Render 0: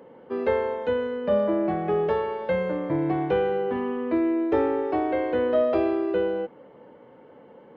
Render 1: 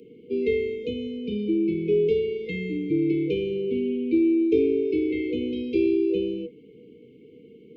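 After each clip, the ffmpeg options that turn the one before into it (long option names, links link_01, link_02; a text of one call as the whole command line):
ffmpeg -i in.wav -filter_complex "[0:a]afftfilt=real='re*(1-between(b*sr/4096,490,2100))':imag='im*(1-between(b*sr/4096,490,2100))':win_size=4096:overlap=0.75,acrossover=split=190|570|1000[link_01][link_02][link_03][link_04];[link_01]alimiter=level_in=15dB:limit=-24dB:level=0:latency=1:release=37,volume=-15dB[link_05];[link_05][link_02][link_03][link_04]amix=inputs=4:normalize=0,volume=3.5dB" out.wav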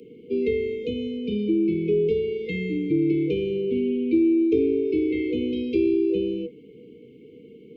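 ffmpeg -i in.wav -filter_complex "[0:a]acrossover=split=360[link_01][link_02];[link_02]acompressor=threshold=-32dB:ratio=2[link_03];[link_01][link_03]amix=inputs=2:normalize=0,volume=2.5dB" out.wav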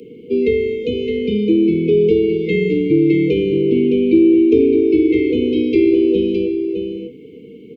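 ffmpeg -i in.wav -af "aecho=1:1:614:0.473,volume=8dB" out.wav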